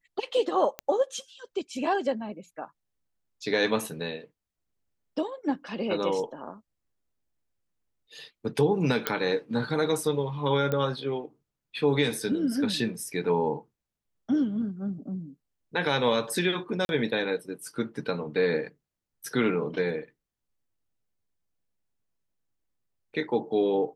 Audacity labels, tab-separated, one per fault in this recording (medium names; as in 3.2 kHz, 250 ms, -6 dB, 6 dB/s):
0.790000	0.790000	pop -16 dBFS
9.070000	9.070000	pop -8 dBFS
10.720000	10.720000	pop -16 dBFS
16.850000	16.890000	dropout 41 ms